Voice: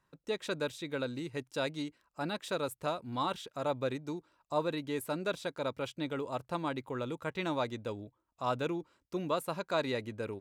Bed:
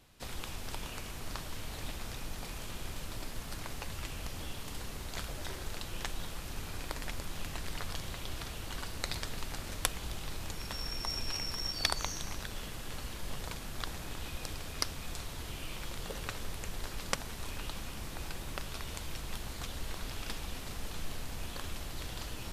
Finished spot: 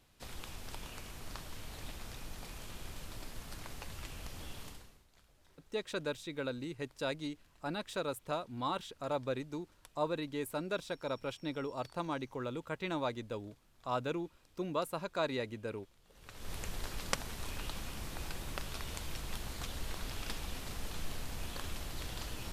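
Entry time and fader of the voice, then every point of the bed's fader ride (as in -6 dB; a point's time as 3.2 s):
5.45 s, -2.5 dB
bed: 4.66 s -5 dB
5.07 s -27 dB
16.04 s -27 dB
16.53 s -1 dB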